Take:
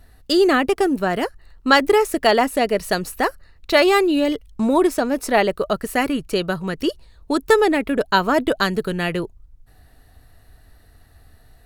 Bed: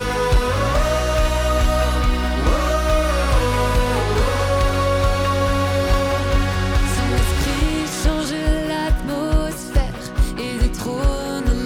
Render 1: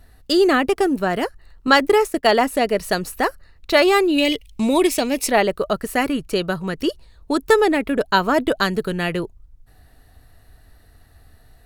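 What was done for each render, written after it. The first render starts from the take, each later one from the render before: 1.67–2.32 expander -25 dBFS; 4.18–5.31 resonant high shelf 1900 Hz +7 dB, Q 3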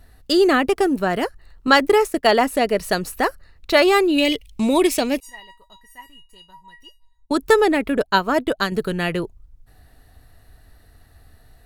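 5.2–7.31 resonator 960 Hz, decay 0.22 s, mix 100%; 8.03–8.72 upward expander, over -37 dBFS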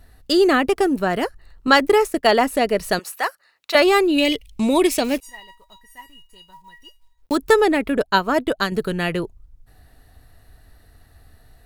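2.99–3.75 HPF 770 Hz; 5.04–7.37 block floating point 5-bit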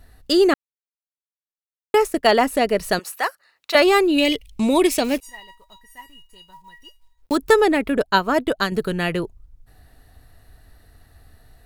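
0.54–1.94 mute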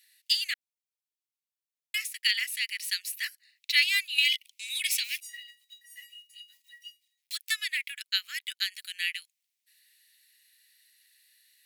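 steep high-pass 2000 Hz 48 dB/oct; dynamic EQ 7500 Hz, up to -4 dB, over -43 dBFS, Q 1.6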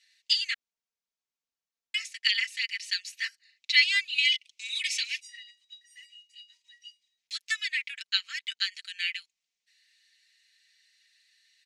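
Chebyshev low-pass 6600 Hz, order 3; comb 4.4 ms, depth 67%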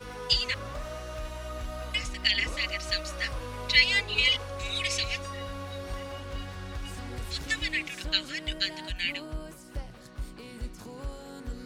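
add bed -19.5 dB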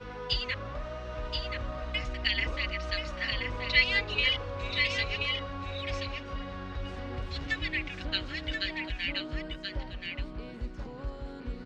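air absorption 200 m; echo 1.029 s -5 dB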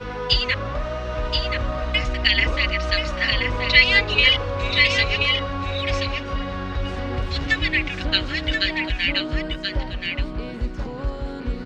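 gain +11 dB; limiter -2 dBFS, peak gain reduction 2 dB

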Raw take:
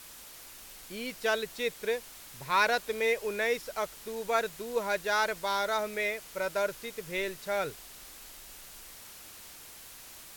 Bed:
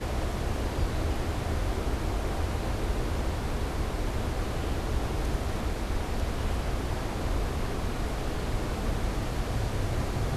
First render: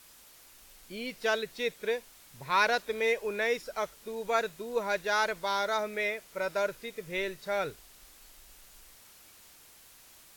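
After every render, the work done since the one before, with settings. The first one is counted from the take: noise print and reduce 7 dB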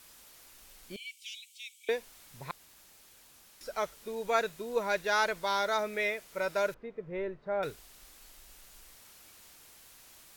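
0.96–1.89 rippled Chebyshev high-pass 2200 Hz, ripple 9 dB; 2.51–3.61 room tone; 6.74–7.63 LPF 1100 Hz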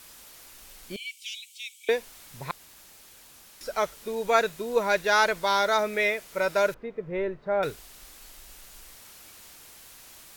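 gain +6.5 dB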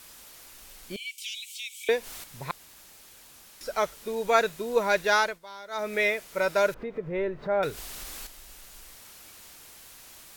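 1.18–2.24 upward compressor, threshold -31 dBFS; 5.13–5.95 dip -19.5 dB, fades 0.26 s; 6.64–8.27 upward compressor, threshold -29 dBFS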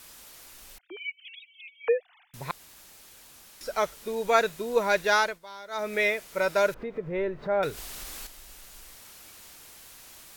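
0.78–2.34 sine-wave speech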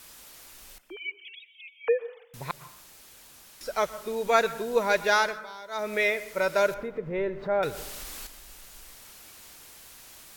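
plate-style reverb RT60 0.65 s, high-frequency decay 0.45×, pre-delay 0.105 s, DRR 15.5 dB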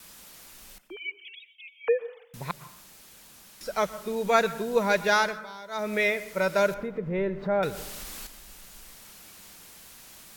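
gate with hold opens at -48 dBFS; bell 190 Hz +9 dB 0.46 oct

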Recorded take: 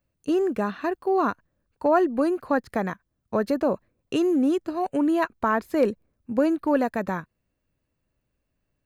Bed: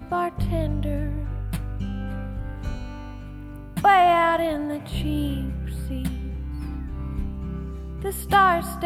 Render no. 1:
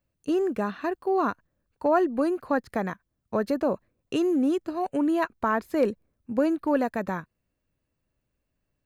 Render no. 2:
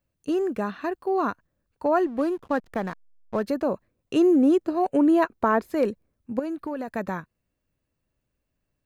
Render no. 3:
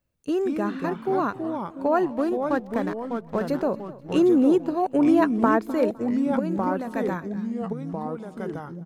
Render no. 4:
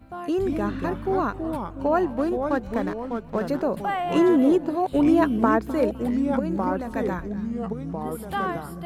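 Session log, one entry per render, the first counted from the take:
gain -2 dB
2.06–3.43 backlash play -36.5 dBFS; 4.16–5.71 bell 440 Hz +6.5 dB 2.2 oct; 6.39–6.88 compressor, threshold -27 dBFS
echoes that change speed 0.125 s, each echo -3 st, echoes 3, each echo -6 dB; feedback echo 0.255 s, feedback 33%, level -19 dB
add bed -11 dB

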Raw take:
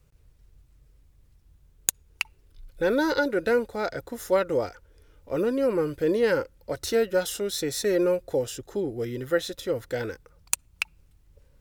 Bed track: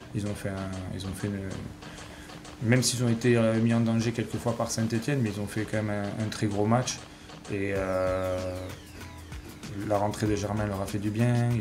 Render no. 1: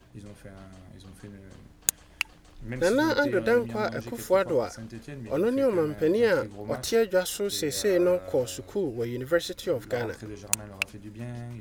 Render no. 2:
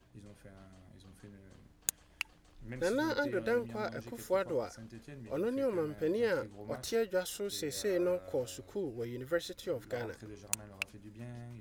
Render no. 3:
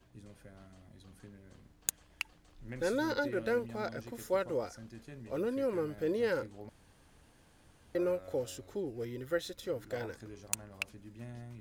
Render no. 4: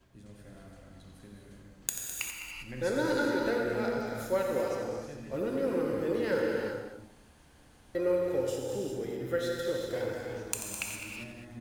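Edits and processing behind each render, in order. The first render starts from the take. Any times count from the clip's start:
add bed track -13 dB
gain -9 dB
6.69–7.95 room tone
loudspeakers at several distances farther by 30 m -10 dB, 71 m -11 dB; non-linear reverb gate 0.43 s flat, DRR -1 dB

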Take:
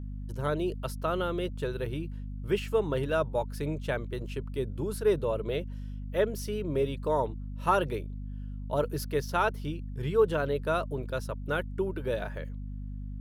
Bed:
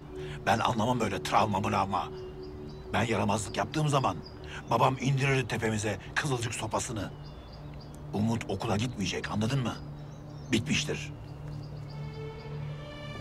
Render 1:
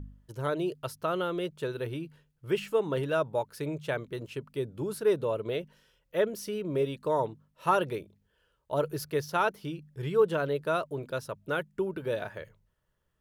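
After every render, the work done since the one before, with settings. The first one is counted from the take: de-hum 50 Hz, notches 5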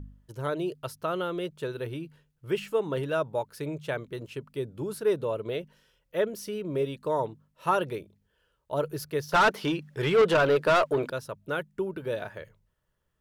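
9.32–11.1 overdrive pedal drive 24 dB, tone 3100 Hz, clips at -13 dBFS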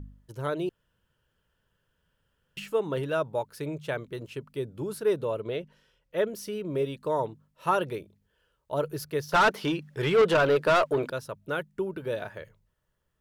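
0.69–2.57 room tone; 5.41–6.18 high shelf 8800 Hz -10.5 dB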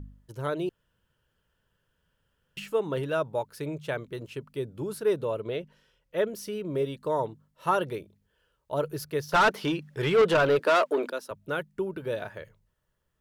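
6.72–7.93 notch 2500 Hz; 10.59–11.31 steep high-pass 200 Hz 48 dB/oct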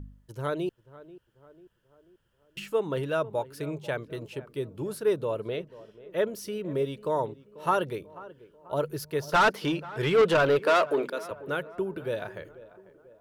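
tape echo 0.49 s, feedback 57%, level -17 dB, low-pass 1400 Hz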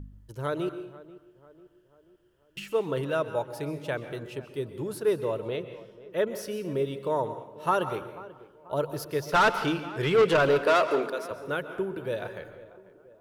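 plate-style reverb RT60 0.78 s, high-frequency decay 0.8×, pre-delay 0.115 s, DRR 10.5 dB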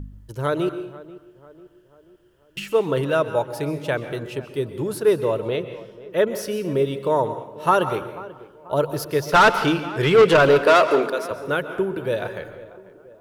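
gain +7.5 dB

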